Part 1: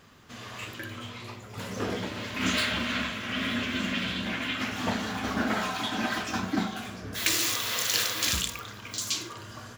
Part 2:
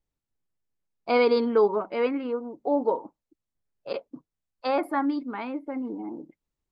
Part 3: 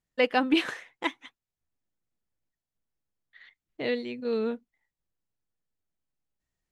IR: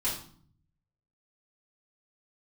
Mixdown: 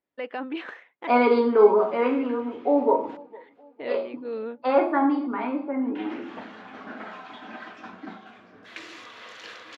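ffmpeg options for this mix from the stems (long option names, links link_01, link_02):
-filter_complex "[0:a]adelay=1500,volume=-8.5dB,asplit=3[link_01][link_02][link_03];[link_01]atrim=end=3.17,asetpts=PTS-STARTPTS,afade=type=out:start_time=3.166:duration=0.004:curve=hsin[link_04];[link_02]atrim=start=3.17:end=5.95,asetpts=PTS-STARTPTS,volume=0[link_05];[link_03]atrim=start=5.95,asetpts=PTS-STARTPTS,afade=type=in:duration=0.004:curve=hsin[link_06];[link_04][link_05][link_06]concat=n=3:v=0:a=1,asplit=2[link_07][link_08];[link_08]volume=-22.5dB[link_09];[1:a]volume=0dB,asplit=3[link_10][link_11][link_12];[link_11]volume=-4.5dB[link_13];[link_12]volume=-19dB[link_14];[2:a]alimiter=limit=-19dB:level=0:latency=1:release=26,volume=-2.5dB[link_15];[3:a]atrim=start_sample=2205[link_16];[link_13][link_16]afir=irnorm=-1:irlink=0[link_17];[link_09][link_14]amix=inputs=2:normalize=0,aecho=0:1:459|918|1377|1836|2295|2754:1|0.42|0.176|0.0741|0.0311|0.0131[link_18];[link_07][link_10][link_15][link_17][link_18]amix=inputs=5:normalize=0,highpass=270,lowpass=2300"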